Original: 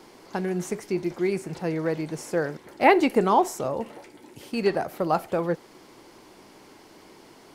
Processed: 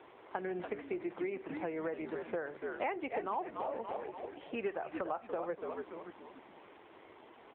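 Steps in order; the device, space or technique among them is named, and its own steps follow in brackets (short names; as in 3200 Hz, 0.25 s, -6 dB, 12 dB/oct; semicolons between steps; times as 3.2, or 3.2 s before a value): frequency-shifting echo 0.287 s, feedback 46%, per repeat -83 Hz, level -9 dB; 3.86–5.07 dynamic EQ 1300 Hz, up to +3 dB, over -46 dBFS, Q 3; voicemail (BPF 410–3300 Hz; compressor 6:1, threshold -32 dBFS, peak gain reduction 18 dB; gain -1.5 dB; AMR-NB 7.4 kbps 8000 Hz)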